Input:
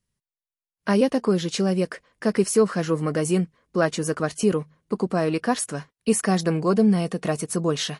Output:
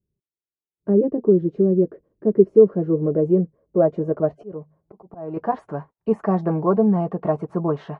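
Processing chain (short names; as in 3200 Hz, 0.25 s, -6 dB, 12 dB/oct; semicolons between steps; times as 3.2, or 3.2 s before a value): 4.22–5.37 auto swell 0.443 s; notch comb 250 Hz; low-pass sweep 380 Hz -> 880 Hz, 2.21–5.63; gain +1 dB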